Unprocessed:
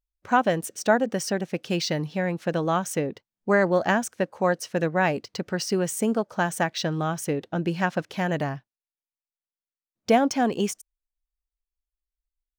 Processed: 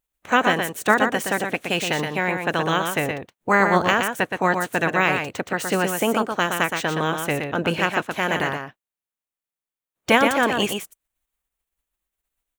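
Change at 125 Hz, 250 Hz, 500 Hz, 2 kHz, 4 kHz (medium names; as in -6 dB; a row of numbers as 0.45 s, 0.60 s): 0.0 dB, +1.0 dB, +1.5 dB, +8.5 dB, +7.0 dB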